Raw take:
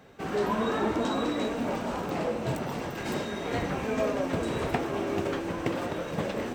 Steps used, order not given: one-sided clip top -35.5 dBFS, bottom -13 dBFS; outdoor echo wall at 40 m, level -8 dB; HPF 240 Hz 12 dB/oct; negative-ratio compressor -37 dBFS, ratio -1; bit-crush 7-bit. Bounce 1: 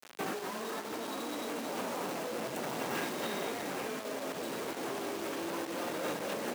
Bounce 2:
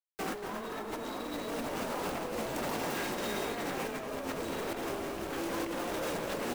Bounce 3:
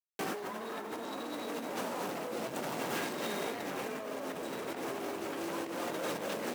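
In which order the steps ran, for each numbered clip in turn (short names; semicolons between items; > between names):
outdoor echo > one-sided clip > negative-ratio compressor > bit-crush > HPF; HPF > one-sided clip > bit-crush > negative-ratio compressor > outdoor echo; bit-crush > one-sided clip > outdoor echo > negative-ratio compressor > HPF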